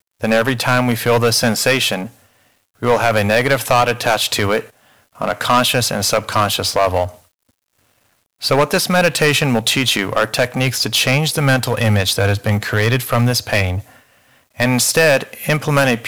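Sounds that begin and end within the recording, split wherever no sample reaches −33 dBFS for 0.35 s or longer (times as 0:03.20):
0:02.82–0:04.67
0:05.18–0:07.15
0:08.42–0:13.81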